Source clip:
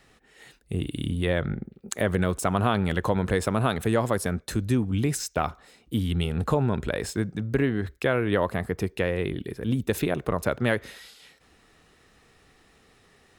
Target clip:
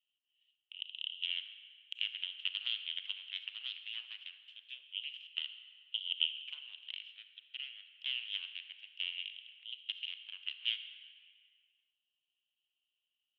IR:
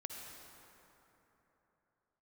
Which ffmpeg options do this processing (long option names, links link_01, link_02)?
-filter_complex "[0:a]aeval=exprs='0.355*(cos(1*acos(clip(val(0)/0.355,-1,1)))-cos(1*PI/2))+0.126*(cos(3*acos(clip(val(0)/0.355,-1,1)))-cos(3*PI/2))+0.0398*(cos(6*acos(clip(val(0)/0.355,-1,1)))-cos(6*PI/2))':channel_layout=same,asuperpass=centerf=3000:order=4:qfactor=6.7,asplit=2[link_01][link_02];[1:a]atrim=start_sample=2205,asetrate=79380,aresample=44100[link_03];[link_02][link_03]afir=irnorm=-1:irlink=0,volume=4dB[link_04];[link_01][link_04]amix=inputs=2:normalize=0,volume=6dB"